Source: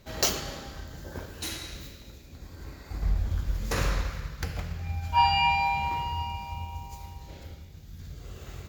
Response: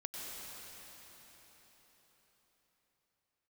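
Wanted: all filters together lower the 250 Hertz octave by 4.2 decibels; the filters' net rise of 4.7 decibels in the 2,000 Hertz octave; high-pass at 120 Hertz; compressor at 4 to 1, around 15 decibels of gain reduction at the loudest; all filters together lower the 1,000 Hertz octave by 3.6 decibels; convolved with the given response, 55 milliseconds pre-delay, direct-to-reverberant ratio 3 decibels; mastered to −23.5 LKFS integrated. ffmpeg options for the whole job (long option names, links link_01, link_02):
-filter_complex "[0:a]highpass=120,equalizer=frequency=250:width_type=o:gain=-5.5,equalizer=frequency=1000:width_type=o:gain=-5,equalizer=frequency=2000:width_type=o:gain=7,acompressor=threshold=-38dB:ratio=4,asplit=2[link_01][link_02];[1:a]atrim=start_sample=2205,adelay=55[link_03];[link_02][link_03]afir=irnorm=-1:irlink=0,volume=-3.5dB[link_04];[link_01][link_04]amix=inputs=2:normalize=0,volume=16dB"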